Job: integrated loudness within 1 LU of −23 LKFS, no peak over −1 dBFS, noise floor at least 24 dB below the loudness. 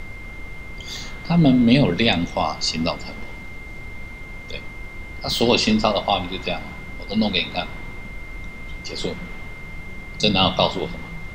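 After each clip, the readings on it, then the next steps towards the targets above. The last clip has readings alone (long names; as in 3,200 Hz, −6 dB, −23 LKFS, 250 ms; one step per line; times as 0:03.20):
interfering tone 2,100 Hz; level of the tone −38 dBFS; background noise floor −37 dBFS; target noise floor −45 dBFS; integrated loudness −20.5 LKFS; sample peak −1.0 dBFS; target loudness −23.0 LKFS
→ notch filter 2,100 Hz, Q 30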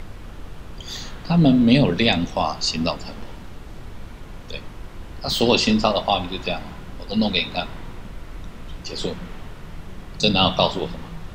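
interfering tone none found; background noise floor −39 dBFS; target noise floor −45 dBFS
→ noise reduction from a noise print 6 dB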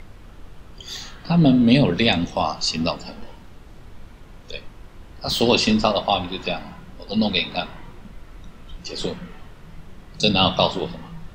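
background noise floor −45 dBFS; integrated loudness −20.5 LKFS; sample peak −1.5 dBFS; target loudness −23.0 LKFS
→ level −2.5 dB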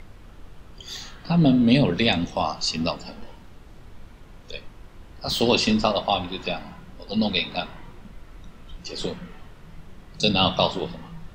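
integrated loudness −23.0 LKFS; sample peak −4.0 dBFS; background noise floor −47 dBFS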